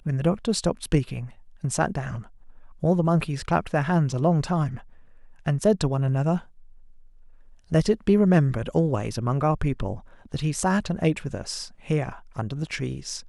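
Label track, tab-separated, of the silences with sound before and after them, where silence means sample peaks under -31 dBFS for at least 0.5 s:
2.200000	2.830000	silence
4.790000	5.460000	silence
6.390000	7.720000	silence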